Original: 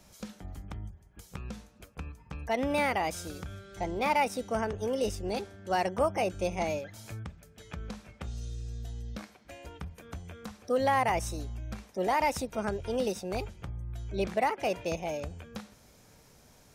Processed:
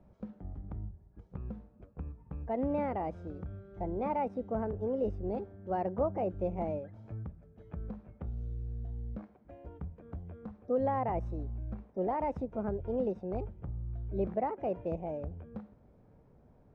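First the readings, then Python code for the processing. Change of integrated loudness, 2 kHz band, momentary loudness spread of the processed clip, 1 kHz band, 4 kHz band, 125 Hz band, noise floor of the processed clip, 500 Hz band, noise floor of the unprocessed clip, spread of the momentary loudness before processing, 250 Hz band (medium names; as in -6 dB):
-4.5 dB, -18.0 dB, 14 LU, -6.0 dB, under -25 dB, 0.0 dB, -62 dBFS, -2.5 dB, -59 dBFS, 17 LU, -0.5 dB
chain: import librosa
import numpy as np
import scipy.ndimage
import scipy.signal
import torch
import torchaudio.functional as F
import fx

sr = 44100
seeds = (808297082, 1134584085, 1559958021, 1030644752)

y = scipy.signal.sosfilt(scipy.signal.bessel(2, 570.0, 'lowpass', norm='mag', fs=sr, output='sos'), x)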